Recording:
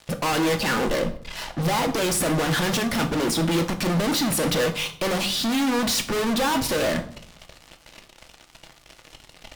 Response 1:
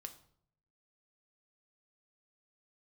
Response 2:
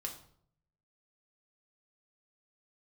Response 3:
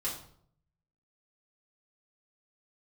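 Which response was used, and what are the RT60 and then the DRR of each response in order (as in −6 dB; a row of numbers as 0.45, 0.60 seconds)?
1; 0.65, 0.60, 0.60 seconds; 5.5, 0.5, −8.0 decibels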